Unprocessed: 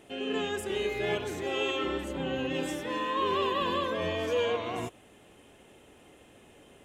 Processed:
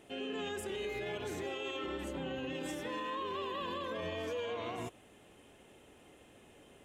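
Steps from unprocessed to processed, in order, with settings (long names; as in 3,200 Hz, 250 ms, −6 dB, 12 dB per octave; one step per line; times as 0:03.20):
brickwall limiter −27.5 dBFS, peak gain reduction 9 dB
level −3.5 dB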